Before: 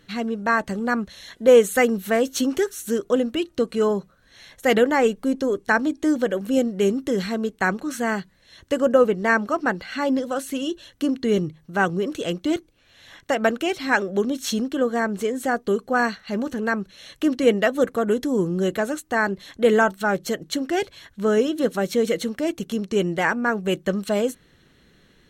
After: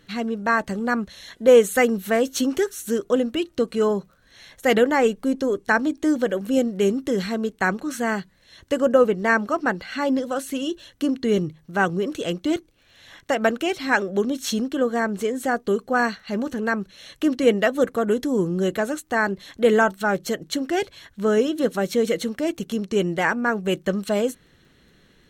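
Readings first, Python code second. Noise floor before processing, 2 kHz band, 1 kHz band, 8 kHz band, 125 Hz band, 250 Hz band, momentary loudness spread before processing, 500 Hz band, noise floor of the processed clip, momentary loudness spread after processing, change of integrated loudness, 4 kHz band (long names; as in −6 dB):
−58 dBFS, 0.0 dB, 0.0 dB, 0.0 dB, 0.0 dB, 0.0 dB, 8 LU, 0.0 dB, −58 dBFS, 8 LU, 0.0 dB, 0.0 dB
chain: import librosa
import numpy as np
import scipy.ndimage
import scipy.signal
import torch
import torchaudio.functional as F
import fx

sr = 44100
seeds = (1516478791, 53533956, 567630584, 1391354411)

y = fx.dmg_crackle(x, sr, seeds[0], per_s=23.0, level_db=-47.0)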